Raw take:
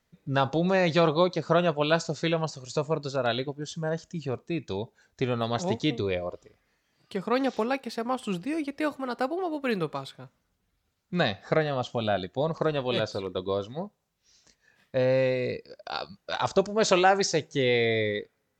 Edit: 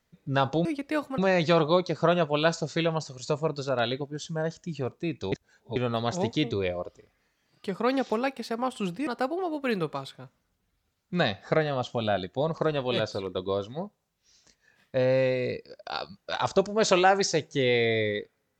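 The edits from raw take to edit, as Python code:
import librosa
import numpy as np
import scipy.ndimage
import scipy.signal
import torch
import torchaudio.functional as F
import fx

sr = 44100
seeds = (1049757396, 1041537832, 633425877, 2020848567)

y = fx.edit(x, sr, fx.reverse_span(start_s=4.79, length_s=0.44),
    fx.move(start_s=8.54, length_s=0.53, to_s=0.65), tone=tone)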